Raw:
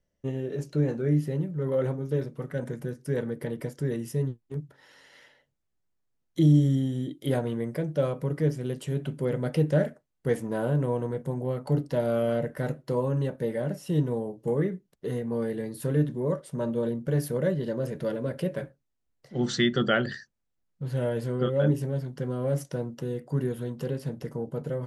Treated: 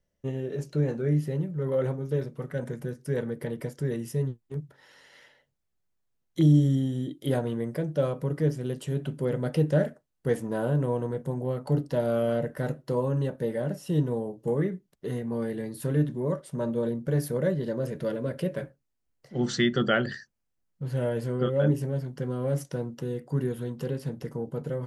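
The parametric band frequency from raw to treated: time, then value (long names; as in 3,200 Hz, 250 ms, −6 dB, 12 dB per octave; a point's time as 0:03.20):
parametric band −4 dB 0.23 octaves
290 Hz
from 0:06.41 2,200 Hz
from 0:14.55 480 Hz
from 0:16.55 2,900 Hz
from 0:17.85 810 Hz
from 0:18.63 3,700 Hz
from 0:22.22 620 Hz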